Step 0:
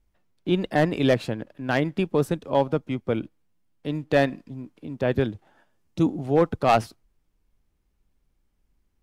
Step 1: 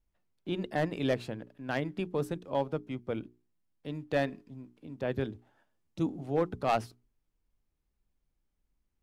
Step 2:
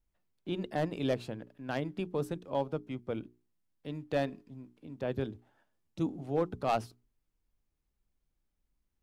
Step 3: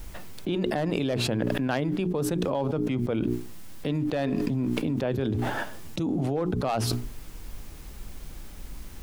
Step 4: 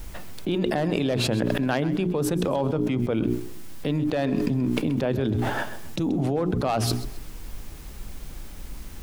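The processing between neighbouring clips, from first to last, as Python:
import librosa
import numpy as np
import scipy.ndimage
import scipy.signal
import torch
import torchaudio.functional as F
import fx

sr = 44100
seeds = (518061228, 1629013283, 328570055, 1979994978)

y1 = fx.hum_notches(x, sr, base_hz=60, count=7)
y1 = y1 * librosa.db_to_amplitude(-9.0)
y2 = fx.dynamic_eq(y1, sr, hz=1900.0, q=2.3, threshold_db=-50.0, ratio=4.0, max_db=-5)
y2 = y2 * librosa.db_to_amplitude(-1.5)
y3 = fx.env_flatten(y2, sr, amount_pct=100)
y4 = fx.echo_feedback(y3, sr, ms=131, feedback_pct=32, wet_db=-15.5)
y4 = y4 * librosa.db_to_amplitude(2.5)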